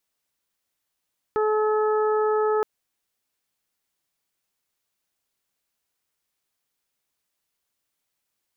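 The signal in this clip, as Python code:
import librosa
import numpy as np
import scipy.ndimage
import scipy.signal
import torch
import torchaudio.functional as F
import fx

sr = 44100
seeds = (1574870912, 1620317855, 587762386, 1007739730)

y = fx.additive_steady(sr, length_s=1.27, hz=429.0, level_db=-20, upper_db=(-8.0, -8.0, -19.0))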